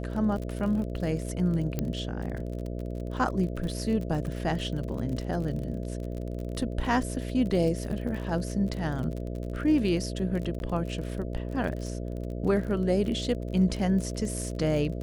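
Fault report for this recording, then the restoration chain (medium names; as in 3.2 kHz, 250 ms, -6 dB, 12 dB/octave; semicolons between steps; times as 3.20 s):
buzz 60 Hz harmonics 11 -34 dBFS
crackle 39 per s -34 dBFS
1.79 s: pop -15 dBFS
10.59–10.60 s: dropout 11 ms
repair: de-click; de-hum 60 Hz, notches 11; interpolate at 10.59 s, 11 ms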